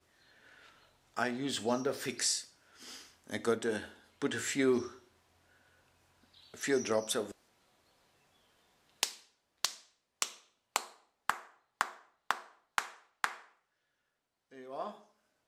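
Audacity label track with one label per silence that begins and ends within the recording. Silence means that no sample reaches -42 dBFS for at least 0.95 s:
4.910000	6.540000	silence
7.320000	9.030000	silence
13.350000	14.570000	silence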